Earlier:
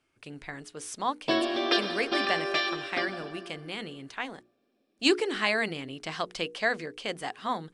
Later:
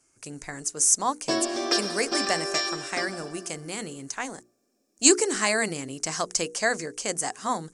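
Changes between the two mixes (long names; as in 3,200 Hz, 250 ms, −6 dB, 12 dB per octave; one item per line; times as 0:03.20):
speech +3.5 dB
master: add high shelf with overshoot 4,800 Hz +12.5 dB, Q 3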